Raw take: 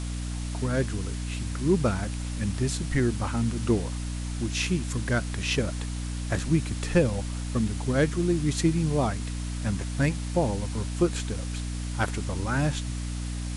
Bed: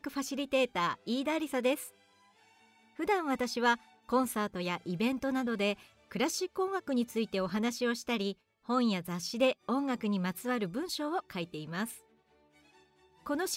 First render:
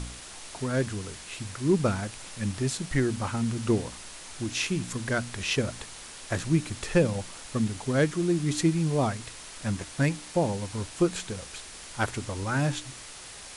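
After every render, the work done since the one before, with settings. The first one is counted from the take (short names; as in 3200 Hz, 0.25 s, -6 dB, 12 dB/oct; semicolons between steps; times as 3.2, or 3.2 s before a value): de-hum 60 Hz, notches 5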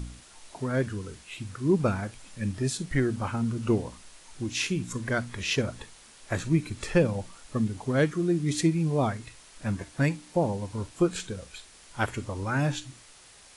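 noise print and reduce 9 dB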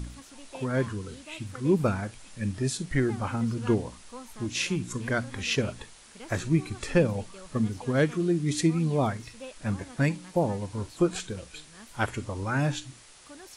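add bed -15 dB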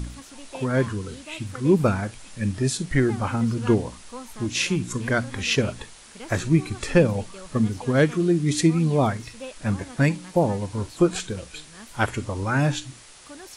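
gain +5 dB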